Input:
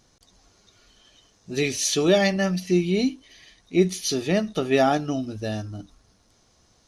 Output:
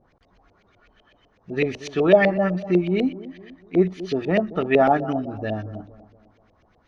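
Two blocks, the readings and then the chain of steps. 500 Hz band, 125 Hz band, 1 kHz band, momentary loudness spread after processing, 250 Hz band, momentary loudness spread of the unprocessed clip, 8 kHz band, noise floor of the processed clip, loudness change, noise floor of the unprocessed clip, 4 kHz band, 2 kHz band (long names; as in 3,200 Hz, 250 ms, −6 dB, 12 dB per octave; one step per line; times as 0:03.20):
+3.0 dB, 0.0 dB, +4.0 dB, 15 LU, +1.0 dB, 11 LU, below −20 dB, −62 dBFS, +1.5 dB, −62 dBFS, −9.0 dB, +2.0 dB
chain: bucket-brigade delay 233 ms, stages 2,048, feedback 41%, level −16 dB
auto-filter low-pass saw up 8 Hz 510–2,800 Hz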